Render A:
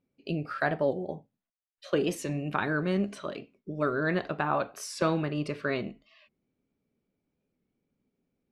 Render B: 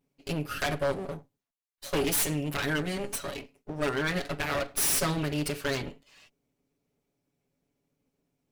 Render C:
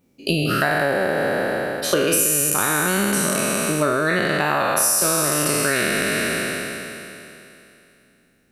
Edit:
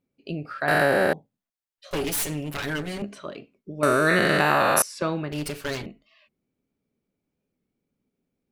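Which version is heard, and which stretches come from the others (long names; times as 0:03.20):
A
0:00.68–0:01.13: punch in from C
0:01.91–0:03.02: punch in from B
0:03.83–0:04.82: punch in from C
0:05.32–0:05.86: punch in from B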